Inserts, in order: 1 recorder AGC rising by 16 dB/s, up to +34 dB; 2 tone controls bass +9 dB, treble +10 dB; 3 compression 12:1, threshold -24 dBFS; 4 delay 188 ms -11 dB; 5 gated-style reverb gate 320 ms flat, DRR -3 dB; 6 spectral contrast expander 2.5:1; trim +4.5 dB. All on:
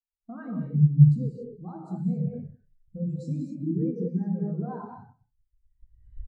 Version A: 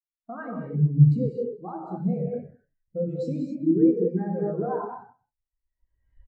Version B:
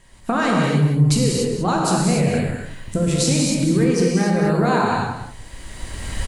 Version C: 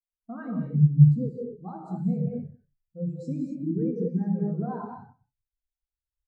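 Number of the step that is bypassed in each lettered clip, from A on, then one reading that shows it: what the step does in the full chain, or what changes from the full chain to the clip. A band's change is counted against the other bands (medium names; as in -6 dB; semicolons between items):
2, crest factor change -2.0 dB; 6, 1 kHz band +14.0 dB; 1, momentary loudness spread change -2 LU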